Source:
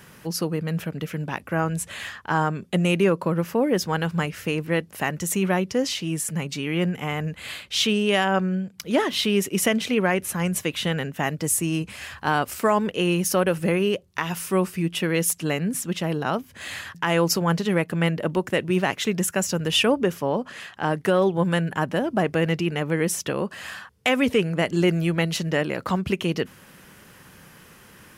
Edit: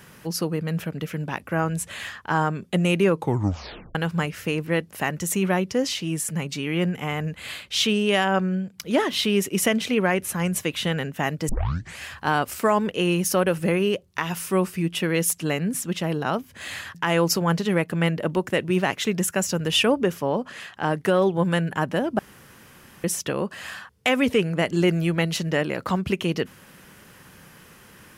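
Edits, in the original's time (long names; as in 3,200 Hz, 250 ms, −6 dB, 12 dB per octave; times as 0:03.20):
0:03.13: tape stop 0.82 s
0:11.49: tape start 0.50 s
0:22.19–0:23.04: fill with room tone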